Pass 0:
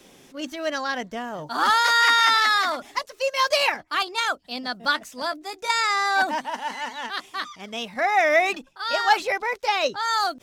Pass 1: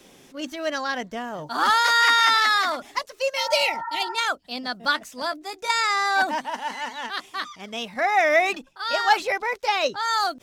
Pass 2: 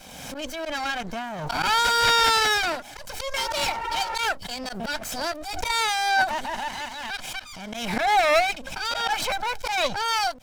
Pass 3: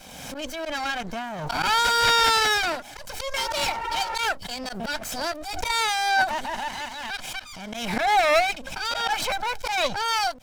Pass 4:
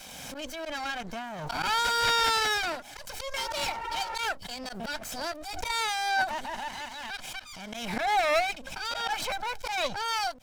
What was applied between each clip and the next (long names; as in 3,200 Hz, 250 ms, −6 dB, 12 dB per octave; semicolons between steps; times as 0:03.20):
healed spectral selection 0:03.40–0:04.11, 850–1,900 Hz after
lower of the sound and its delayed copy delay 1.3 ms; volume swells 107 ms; background raised ahead of every attack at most 38 dB per second
no processing that can be heard
one half of a high-frequency compander encoder only; level −5.5 dB